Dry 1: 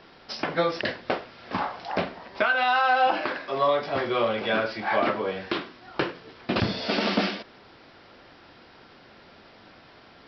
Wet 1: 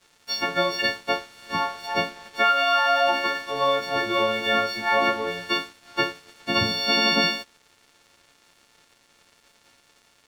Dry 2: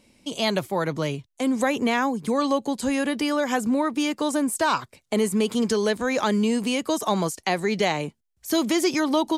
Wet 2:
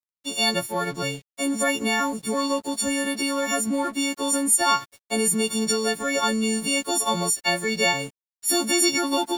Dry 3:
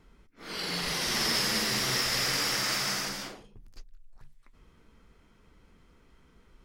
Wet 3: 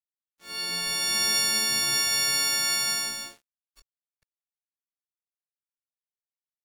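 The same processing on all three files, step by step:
every partial snapped to a pitch grid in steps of 4 semitones
dead-zone distortion −42.5 dBFS
loudness normalisation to −23 LKFS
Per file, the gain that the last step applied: 0.0, −2.0, −5.5 decibels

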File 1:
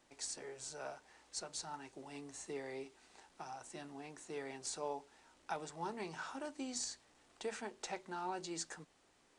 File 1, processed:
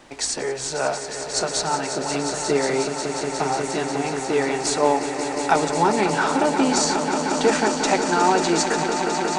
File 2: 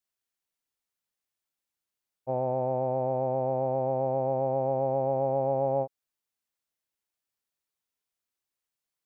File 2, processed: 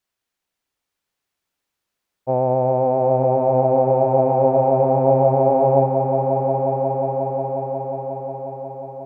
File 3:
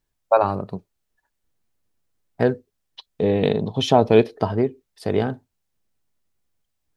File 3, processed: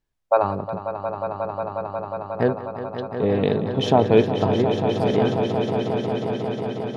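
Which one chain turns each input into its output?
high-shelf EQ 5,500 Hz −8.5 dB
echo that builds up and dies away 180 ms, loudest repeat 5, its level −10 dB
normalise the peak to −3 dBFS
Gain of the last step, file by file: +23.0, +10.0, −1.5 decibels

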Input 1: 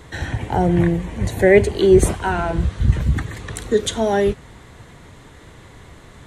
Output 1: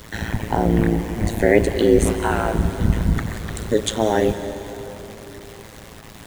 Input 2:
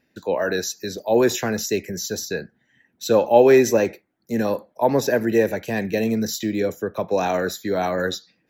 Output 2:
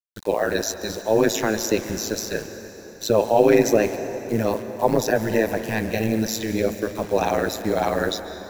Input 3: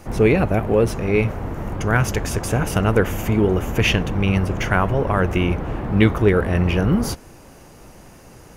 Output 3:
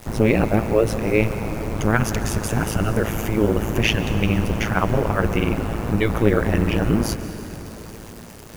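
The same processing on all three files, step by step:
in parallel at +1 dB: brickwall limiter −11 dBFS
on the sum: bit reduction 6 bits
amplitude modulation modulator 110 Hz, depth 100%
dense smooth reverb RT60 4.4 s, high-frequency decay 0.7×, pre-delay 120 ms, DRR 10 dB
level −2.5 dB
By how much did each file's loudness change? −2.0, −1.0, −1.5 LU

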